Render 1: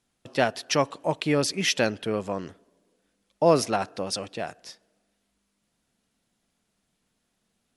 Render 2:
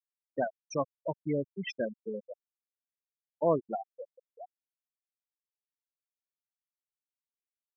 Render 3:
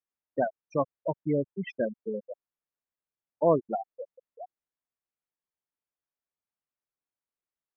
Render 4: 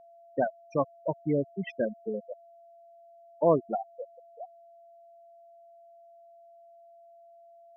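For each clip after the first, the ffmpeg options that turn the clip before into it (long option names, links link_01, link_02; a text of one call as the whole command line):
ffmpeg -i in.wav -af "afftfilt=real='re*gte(hypot(re,im),0.251)':imag='im*gte(hypot(re,im),0.251)':win_size=1024:overlap=0.75,volume=-7dB" out.wav
ffmpeg -i in.wav -af "lowpass=1700,volume=4dB" out.wav
ffmpeg -i in.wav -af "aeval=exprs='val(0)+0.00251*sin(2*PI*680*n/s)':channel_layout=same" out.wav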